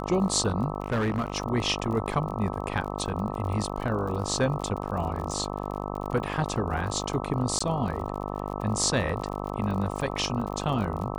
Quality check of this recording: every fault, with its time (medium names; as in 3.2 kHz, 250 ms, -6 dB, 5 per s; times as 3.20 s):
buzz 50 Hz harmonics 26 -33 dBFS
crackle 39 per s -34 dBFS
0.82–1.36 s: clipped -22.5 dBFS
7.59–7.61 s: dropout 15 ms